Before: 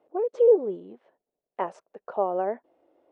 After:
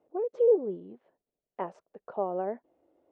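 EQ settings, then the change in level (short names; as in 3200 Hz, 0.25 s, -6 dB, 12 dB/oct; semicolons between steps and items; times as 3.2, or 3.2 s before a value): air absorption 51 m; low shelf 250 Hz +12 dB; -7.0 dB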